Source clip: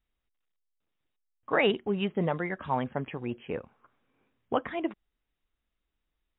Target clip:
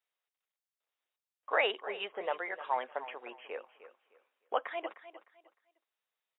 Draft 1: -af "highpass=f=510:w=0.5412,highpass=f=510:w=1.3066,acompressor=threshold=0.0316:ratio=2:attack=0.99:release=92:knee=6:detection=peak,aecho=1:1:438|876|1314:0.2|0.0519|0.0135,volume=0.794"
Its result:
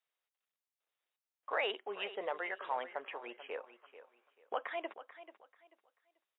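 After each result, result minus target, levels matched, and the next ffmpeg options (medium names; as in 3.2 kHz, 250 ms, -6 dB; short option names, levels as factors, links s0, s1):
echo 133 ms late; compression: peak gain reduction +7 dB
-af "highpass=f=510:w=0.5412,highpass=f=510:w=1.3066,acompressor=threshold=0.0316:ratio=2:attack=0.99:release=92:knee=6:detection=peak,aecho=1:1:305|610|915:0.2|0.0519|0.0135,volume=0.794"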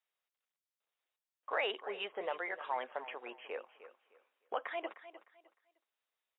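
compression: peak gain reduction +7 dB
-af "highpass=f=510:w=0.5412,highpass=f=510:w=1.3066,aecho=1:1:305|610|915:0.2|0.0519|0.0135,volume=0.794"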